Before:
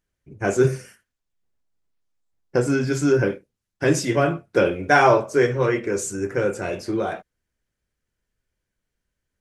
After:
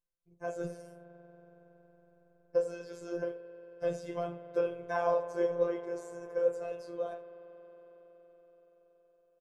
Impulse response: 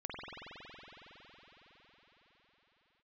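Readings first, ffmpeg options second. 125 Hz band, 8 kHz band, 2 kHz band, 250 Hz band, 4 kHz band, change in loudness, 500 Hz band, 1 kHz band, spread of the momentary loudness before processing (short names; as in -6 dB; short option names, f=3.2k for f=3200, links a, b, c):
-23.5 dB, under -25 dB, -21.5 dB, -19.0 dB, under -20 dB, -13.5 dB, -11.0 dB, -16.5 dB, 10 LU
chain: -filter_complex "[0:a]flanger=delay=0.8:depth=3.5:regen=-48:speed=0.22:shape=sinusoidal,acrossover=split=2900[a][b];[b]acompressor=threshold=-42dB:ratio=4:attack=1:release=60[c];[a][c]amix=inputs=2:normalize=0,aecho=1:1:1.9:0.53,asplit=2[d][e];[1:a]atrim=start_sample=2205,adelay=87[f];[e][f]afir=irnorm=-1:irlink=0,volume=-15.5dB[g];[d][g]amix=inputs=2:normalize=0,afftfilt=real='hypot(re,im)*cos(PI*b)':imag='0':win_size=1024:overlap=0.75,equalizer=f=125:t=o:w=1:g=-4,equalizer=f=250:t=o:w=1:g=-9,equalizer=f=500:t=o:w=1:g=7,equalizer=f=2k:t=o:w=1:g=-11,equalizer=f=8k:t=o:w=1:g=-3,volume=-8.5dB"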